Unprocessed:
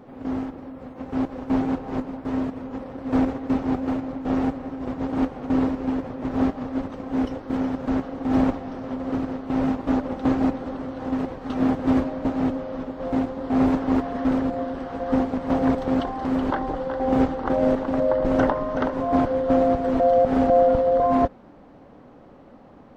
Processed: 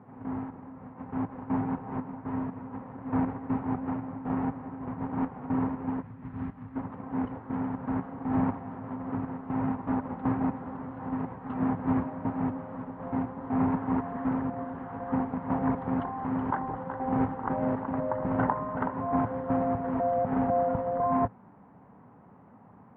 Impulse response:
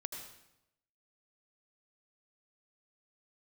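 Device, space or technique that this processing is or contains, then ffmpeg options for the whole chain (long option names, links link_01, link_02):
bass cabinet: -filter_complex "[0:a]asettb=1/sr,asplit=3[link_01][link_02][link_03];[link_01]atrim=end=6.024[link_04];[link_02]atrim=start=6.02:end=6.76,asetpts=PTS-STARTPTS,afade=type=in:duration=0.004:curve=qsin,afade=type=out:start_time=0.736:duration=0.004:curve=qsin,equalizer=frequency=610:width_type=o:width=2.7:gain=-14[link_05];[link_03]atrim=start=6.756[link_06];[link_04][link_05]acrossfade=duration=0.004:curve1=hsin:curve2=qsin[link_07];[link_07][link_06]acrossfade=duration=0.004:curve1=qsin:curve2=hsin,highpass=78,equalizer=frequency=110:width_type=q:width=4:gain=8,equalizer=frequency=180:width_type=q:width=4:gain=7,equalizer=frequency=320:width_type=q:width=4:gain=-7,equalizer=frequency=550:width_type=q:width=4:gain=-8,equalizer=frequency=950:width_type=q:width=4:gain=7,lowpass=frequency=2100:width=0.5412,lowpass=frequency=2100:width=1.3066,volume=-6dB"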